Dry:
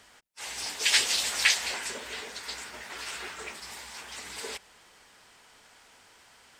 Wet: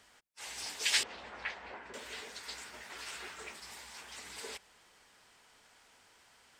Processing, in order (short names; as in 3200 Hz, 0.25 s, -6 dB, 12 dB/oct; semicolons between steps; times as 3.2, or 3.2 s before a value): 1.03–1.94 LPF 1300 Hz 12 dB/oct; gain -6.5 dB